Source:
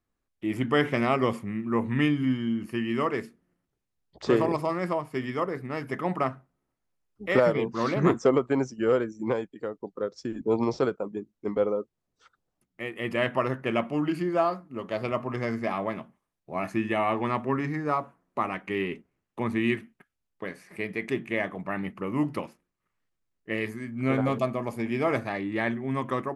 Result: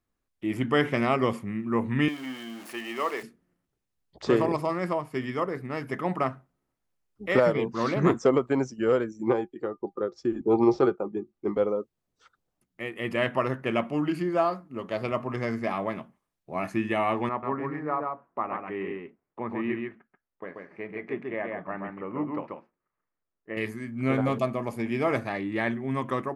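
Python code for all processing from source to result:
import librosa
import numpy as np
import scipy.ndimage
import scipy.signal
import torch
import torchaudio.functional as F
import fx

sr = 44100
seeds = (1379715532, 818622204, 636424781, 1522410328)

y = fx.chain(x, sr, fx.zero_step(step_db=-37.5),
    fx.highpass(hz=510.0, slope=12),
    fx.dynamic_eq(hz=1500.0, q=6.4, threshold_db=-53.0, ratio=4.0, max_db=-6), at=(2.08, 3.23))
y = fx.chain(y, sr, fx.high_shelf(hz=5100.0, db=-9.5),
    fx.small_body(hz=(360.0, 800.0, 1200.0), ring_ms=95, db=12), at=(9.27, 11.54))
y = fx.chain(y, sr, fx.lowpass(hz=1400.0, slope=12),
    fx.low_shelf(hz=260.0, db=-11.5),
    fx.echo_single(ms=136, db=-3.5), at=(17.29, 23.57))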